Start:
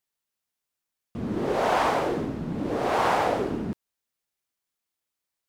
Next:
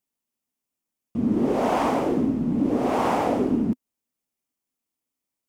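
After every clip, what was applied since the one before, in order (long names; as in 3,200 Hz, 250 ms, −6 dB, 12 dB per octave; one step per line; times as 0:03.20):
graphic EQ with 15 bands 250 Hz +12 dB, 1,600 Hz −6 dB, 4,000 Hz −6 dB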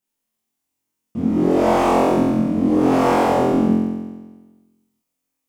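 flutter between parallel walls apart 3.9 metres, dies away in 1.3 s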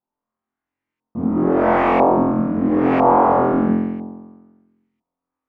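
auto-filter low-pass saw up 1 Hz 850–2,300 Hz
level −1 dB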